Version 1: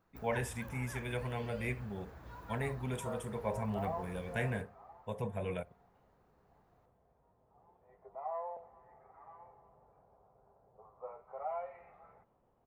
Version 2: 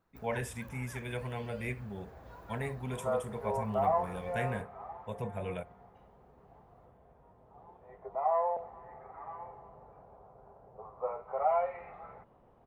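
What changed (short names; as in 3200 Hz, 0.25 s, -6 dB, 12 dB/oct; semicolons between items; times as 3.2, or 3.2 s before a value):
second sound +11.5 dB; reverb: off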